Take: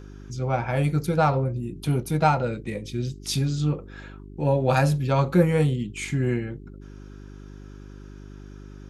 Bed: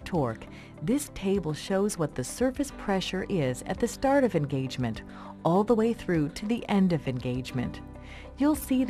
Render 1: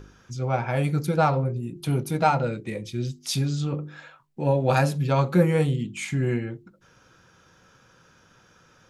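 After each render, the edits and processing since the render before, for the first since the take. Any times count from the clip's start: de-hum 50 Hz, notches 8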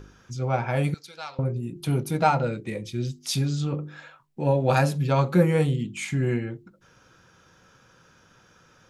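0.94–1.39 s: band-pass filter 4.2 kHz, Q 1.5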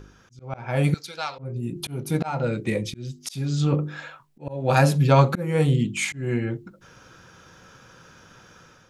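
slow attack 426 ms; level rider gain up to 7 dB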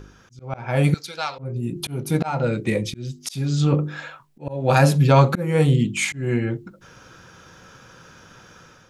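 trim +3 dB; peak limiter -3 dBFS, peak gain reduction 2.5 dB

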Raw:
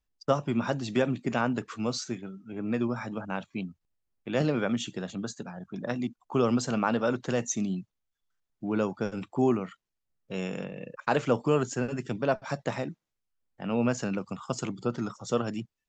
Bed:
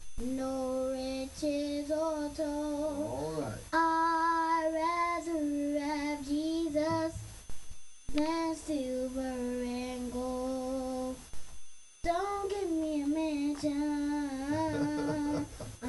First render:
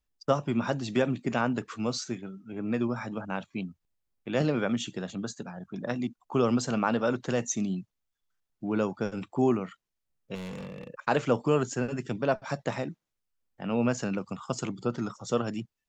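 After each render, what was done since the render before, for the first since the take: 10.35–10.89 s: hard clipper -36 dBFS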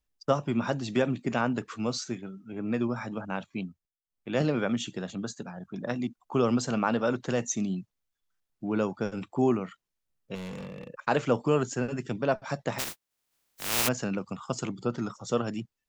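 3.64–4.32 s: dip -22.5 dB, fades 0.26 s; 12.78–13.87 s: spectral contrast reduction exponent 0.11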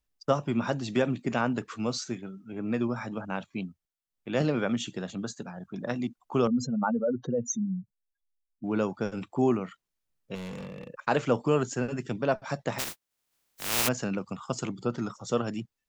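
6.47–8.64 s: spectral contrast enhancement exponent 2.7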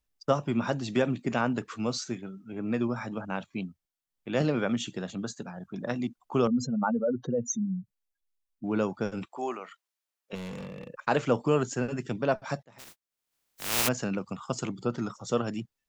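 9.25–10.33 s: high-pass 630 Hz; 12.63–13.78 s: fade in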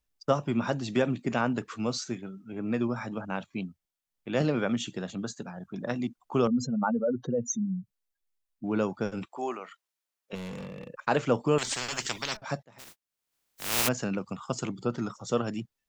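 11.58–12.37 s: spectrum-flattening compressor 10:1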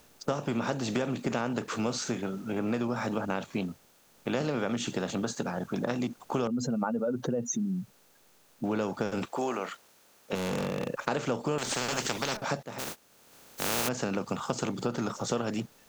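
spectral levelling over time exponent 0.6; compression 4:1, threshold -27 dBFS, peak gain reduction 9.5 dB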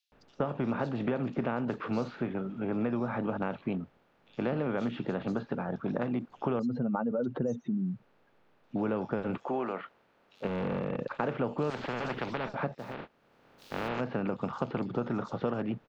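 distance through air 380 m; bands offset in time highs, lows 120 ms, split 4 kHz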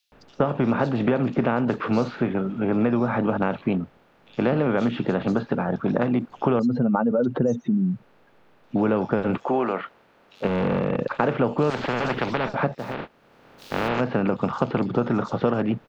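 trim +9.5 dB

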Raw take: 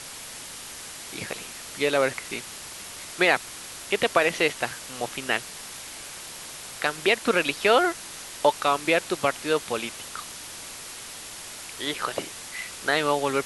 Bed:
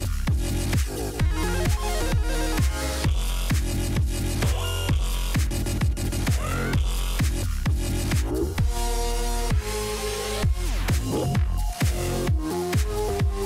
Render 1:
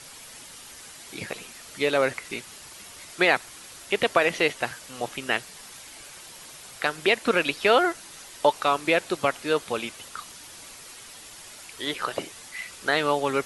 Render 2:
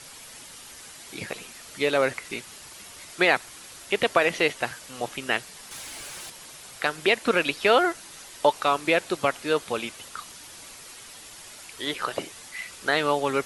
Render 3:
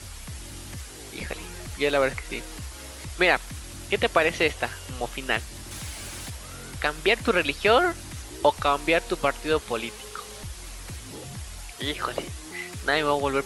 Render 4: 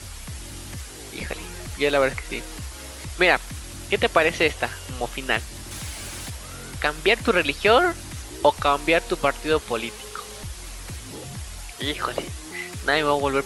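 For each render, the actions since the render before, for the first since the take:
noise reduction 7 dB, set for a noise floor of -40 dBFS
5.71–6.30 s: waveshaping leveller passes 2
add bed -16 dB
trim +2.5 dB

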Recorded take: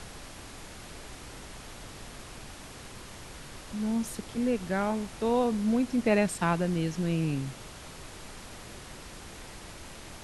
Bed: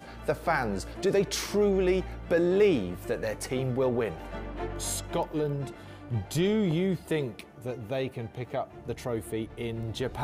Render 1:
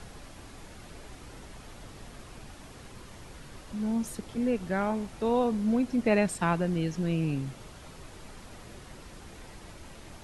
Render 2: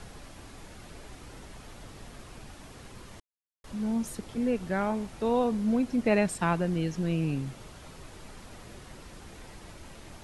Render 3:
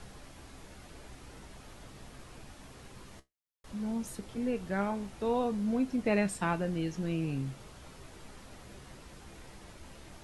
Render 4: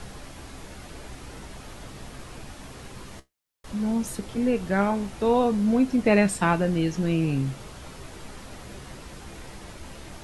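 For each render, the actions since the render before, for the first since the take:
noise reduction 6 dB, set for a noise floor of -46 dBFS
1.17–2.35 s: short-mantissa float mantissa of 6-bit; 3.20–3.64 s: mute
feedback comb 66 Hz, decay 0.16 s, harmonics all, mix 70%
trim +9 dB

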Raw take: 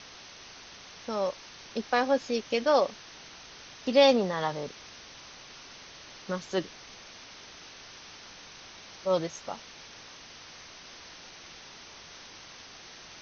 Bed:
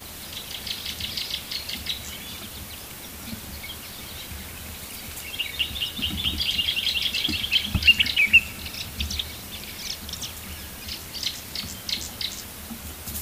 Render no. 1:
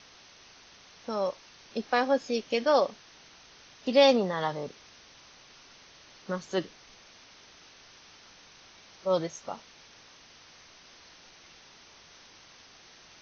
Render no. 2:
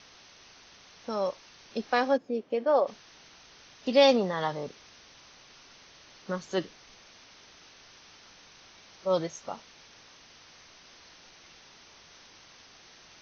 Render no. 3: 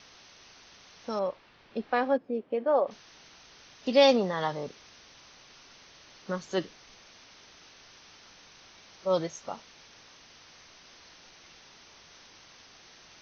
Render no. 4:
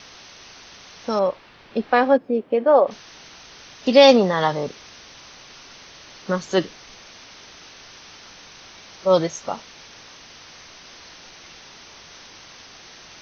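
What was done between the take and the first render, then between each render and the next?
noise print and reduce 6 dB
2.16–2.86 s: band-pass filter 240 Hz -> 680 Hz, Q 0.73
1.19–2.91 s: distance through air 290 m
trim +10 dB; peak limiter -1 dBFS, peak gain reduction 2 dB

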